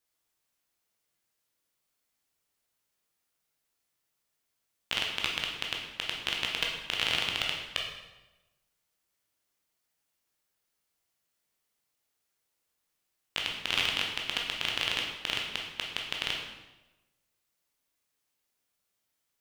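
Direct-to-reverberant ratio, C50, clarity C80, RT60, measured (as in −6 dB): −1.0 dB, 3.5 dB, 6.0 dB, 1.1 s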